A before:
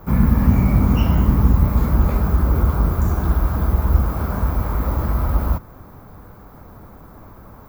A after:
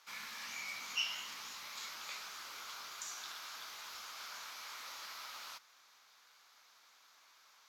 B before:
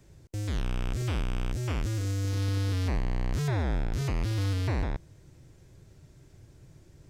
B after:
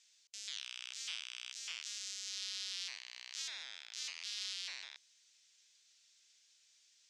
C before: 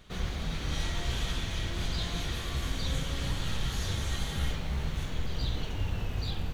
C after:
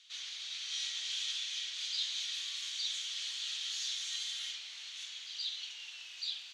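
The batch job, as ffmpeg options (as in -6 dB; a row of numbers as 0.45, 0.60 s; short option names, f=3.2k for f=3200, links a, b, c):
-af "asuperpass=centerf=4600:order=4:qfactor=1.1,volume=4dB"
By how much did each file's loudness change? -24.5, -11.5, -3.0 LU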